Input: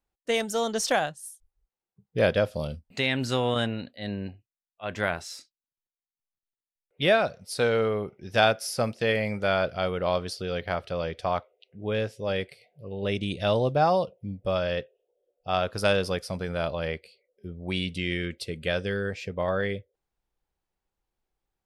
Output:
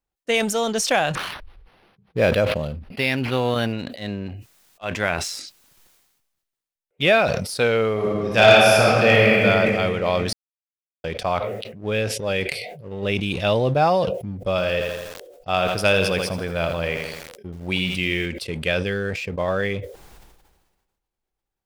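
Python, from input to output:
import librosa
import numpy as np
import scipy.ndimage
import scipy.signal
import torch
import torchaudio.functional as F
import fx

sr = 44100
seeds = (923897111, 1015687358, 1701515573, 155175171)

y = fx.resample_linear(x, sr, factor=6, at=(1.15, 3.73))
y = fx.reverb_throw(y, sr, start_s=7.92, length_s=1.5, rt60_s=2.7, drr_db=-5.5)
y = fx.echo_crushed(y, sr, ms=82, feedback_pct=55, bits=8, wet_db=-9.5, at=(14.5, 18.26))
y = fx.edit(y, sr, fx.silence(start_s=10.33, length_s=0.71), tone=tone)
y = fx.dynamic_eq(y, sr, hz=2500.0, q=3.7, threshold_db=-48.0, ratio=4.0, max_db=7)
y = fx.leveller(y, sr, passes=1)
y = fx.sustainer(y, sr, db_per_s=44.0)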